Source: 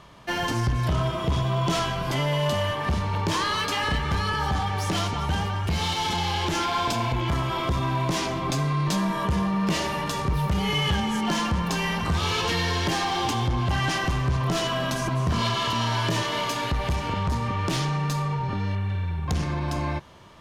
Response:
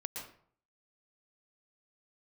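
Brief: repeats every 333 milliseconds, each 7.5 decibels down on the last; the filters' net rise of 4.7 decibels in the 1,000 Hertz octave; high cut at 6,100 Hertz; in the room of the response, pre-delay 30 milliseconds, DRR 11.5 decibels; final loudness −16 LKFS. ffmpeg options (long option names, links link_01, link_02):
-filter_complex "[0:a]lowpass=6100,equalizer=frequency=1000:width_type=o:gain=5.5,aecho=1:1:333|666|999|1332|1665:0.422|0.177|0.0744|0.0312|0.0131,asplit=2[link_01][link_02];[1:a]atrim=start_sample=2205,adelay=30[link_03];[link_02][link_03]afir=irnorm=-1:irlink=0,volume=-11.5dB[link_04];[link_01][link_04]amix=inputs=2:normalize=0,volume=7dB"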